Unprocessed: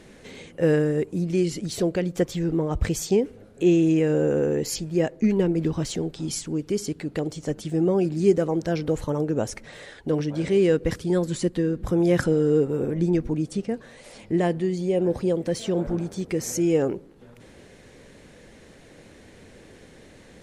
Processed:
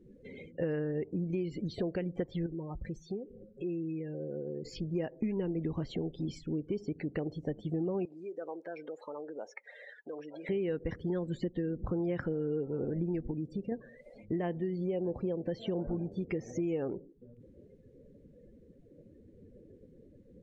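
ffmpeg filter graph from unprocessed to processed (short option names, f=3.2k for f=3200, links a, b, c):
-filter_complex "[0:a]asettb=1/sr,asplit=3[a][b][c];[a]atrim=end=2.464[d];[b]atrim=start=2.46:end=4.65,asetpts=PTS-STARTPTS,afade=t=in:d=0.004:c=qsin,afade=t=out:st=2.186:d=0.004:c=qsin,acompressor=threshold=-37dB:ratio=3:attack=3.2:release=140:knee=1:detection=peak,aecho=1:1:5.5:0.43,atrim=end_sample=96579[e];[c]atrim=start=4.646[f];[d][e]acrossfade=d=0.004:c1=hsin:c2=qsin[g];[g][f]acrossfade=d=0.004:c1=qsin:c2=hsin,asettb=1/sr,asplit=3[h][i][j];[h]atrim=end=8.054[k];[i]atrim=start=8.05:end=10.49,asetpts=PTS-STARTPTS,afade=t=in:d=0.004:c=qsin,afade=t=out:st=2.436:d=0.004:c=qsin,acompressor=threshold=-27dB:ratio=6:attack=3.2:release=140:knee=1:detection=peak,highpass=540[l];[j]atrim=start=10.486[m];[k][l]acrossfade=d=0.004:c1=hsin:c2=qsin[n];[n][m]acrossfade=d=0.004:c1=qsin:c2=hsin,asettb=1/sr,asplit=3[o][p][q];[o]atrim=end=13.314[r];[p]atrim=start=13.31:end=13.72,asetpts=PTS-STARTPTS,afade=t=in:d=0.004:c=qsin,afade=t=out:st=0.406:d=0.004:c=qsin,equalizer=f=1.1k:t=o:w=0.82:g=-4,acompressor=threshold=-30dB:ratio=2:attack=3.2:release=140:knee=1:detection=peak[s];[q]atrim=start=13.716[t];[r][s]acrossfade=d=0.004:c1=hsin:c2=qsin[u];[u][t]acrossfade=d=0.004:c1=qsin:c2=hsin,acrossover=split=3700[v][w];[w]acompressor=threshold=-49dB:ratio=4:attack=1:release=60[x];[v][x]amix=inputs=2:normalize=0,afftdn=nr=30:nf=-41,acompressor=threshold=-27dB:ratio=6,volume=-3.5dB"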